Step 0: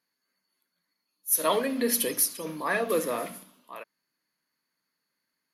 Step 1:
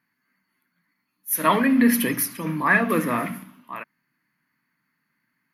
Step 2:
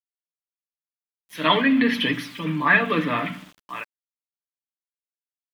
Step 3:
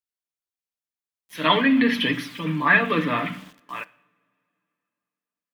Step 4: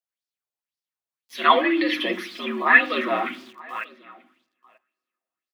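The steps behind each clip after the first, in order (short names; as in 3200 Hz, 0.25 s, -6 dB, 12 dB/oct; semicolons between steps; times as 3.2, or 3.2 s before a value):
graphic EQ 125/250/500/1000/2000/4000/8000 Hz +11/+7/-10/+3/+8/-8/-12 dB; gain +6 dB
synth low-pass 3400 Hz, resonance Q 4.3; comb 6.8 ms, depth 60%; sample gate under -43 dBFS; gain -2 dB
two-slope reverb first 0.69 s, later 2.9 s, from -20 dB, DRR 17.5 dB
frequency shift +68 Hz; echo 0.937 s -23.5 dB; LFO bell 1.9 Hz 620–5000 Hz +12 dB; gain -4 dB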